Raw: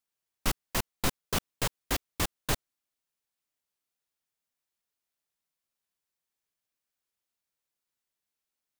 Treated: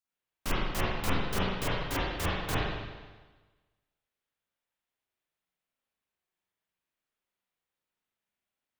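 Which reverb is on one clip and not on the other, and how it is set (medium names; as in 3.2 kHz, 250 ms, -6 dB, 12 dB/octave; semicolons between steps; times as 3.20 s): spring tank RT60 1.3 s, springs 38/49 ms, chirp 60 ms, DRR -9.5 dB; trim -7 dB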